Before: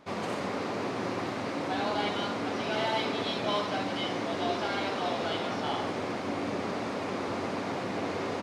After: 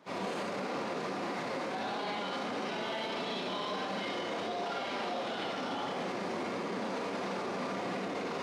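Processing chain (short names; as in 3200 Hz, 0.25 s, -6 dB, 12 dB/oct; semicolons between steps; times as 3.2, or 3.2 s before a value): low shelf 170 Hz -3.5 dB; Schroeder reverb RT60 1 s, combs from 32 ms, DRR -7.5 dB; flange 1.5 Hz, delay 4 ms, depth 9.3 ms, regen -39%; limiter -28 dBFS, peak gain reduction 13.5 dB; HPF 120 Hz 24 dB/oct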